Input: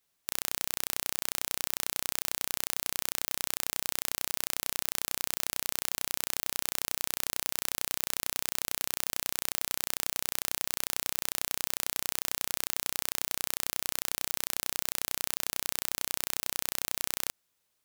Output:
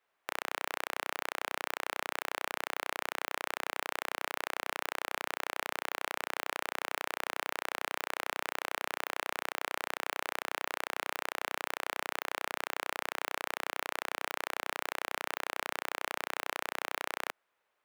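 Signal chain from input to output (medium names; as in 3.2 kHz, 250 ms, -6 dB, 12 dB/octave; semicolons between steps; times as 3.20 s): three-band isolator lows -19 dB, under 380 Hz, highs -22 dB, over 2.4 kHz; trim +7.5 dB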